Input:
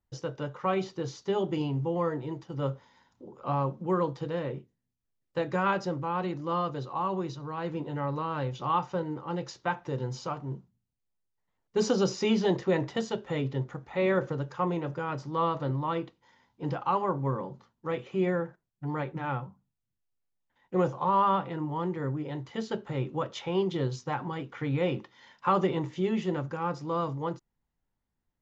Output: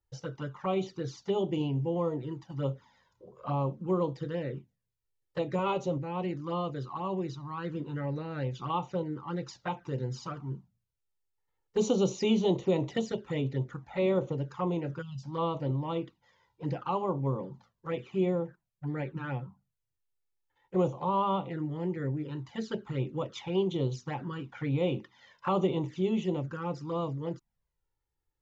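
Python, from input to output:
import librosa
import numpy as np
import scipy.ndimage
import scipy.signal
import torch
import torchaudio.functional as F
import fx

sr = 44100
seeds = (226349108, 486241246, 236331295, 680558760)

y = fx.comb(x, sr, ms=7.4, depth=0.6, at=(5.58, 5.98))
y = fx.spec_box(y, sr, start_s=15.02, length_s=0.22, low_hz=240.0, high_hz=2600.0, gain_db=-28)
y = fx.env_flanger(y, sr, rest_ms=2.3, full_db=-26.0)
y = fx.band_squash(y, sr, depth_pct=40, at=(12.63, 13.12))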